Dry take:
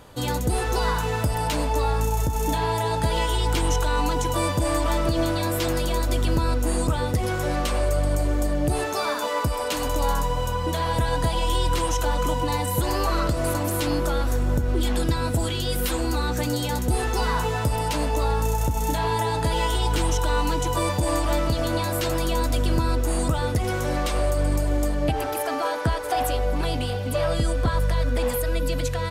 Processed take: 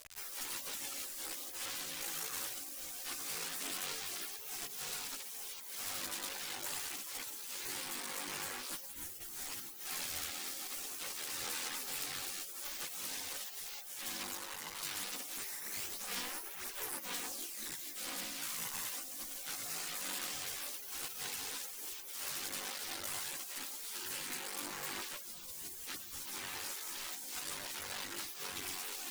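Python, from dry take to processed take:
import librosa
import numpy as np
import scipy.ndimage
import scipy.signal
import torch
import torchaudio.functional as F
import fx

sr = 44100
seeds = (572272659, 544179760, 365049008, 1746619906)

y = fx.quant_companded(x, sr, bits=2)
y = fx.tone_stack(y, sr, knobs='5-5-5')
y = y + 10.0 ** (-46.0 / 20.0) * np.sin(2.0 * np.pi * 640.0 * np.arange(len(y)) / sr)
y = fx.spec_gate(y, sr, threshold_db=-20, keep='weak')
y = fx.chorus_voices(y, sr, voices=6, hz=0.5, base_ms=13, depth_ms=2.1, mix_pct=60)
y = y * librosa.db_to_amplitude(5.0)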